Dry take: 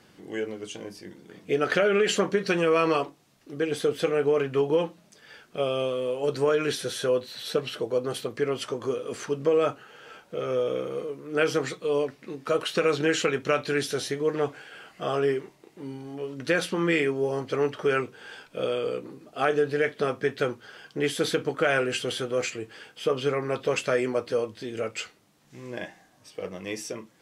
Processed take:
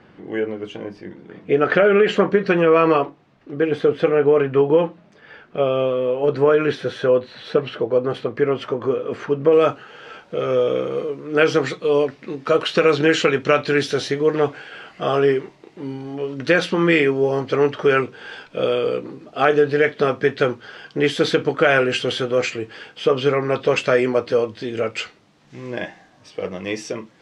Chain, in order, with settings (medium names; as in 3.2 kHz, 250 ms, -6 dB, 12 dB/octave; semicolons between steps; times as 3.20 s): low-pass 2.2 kHz 12 dB/octave, from 9.53 s 4.8 kHz; trim +8 dB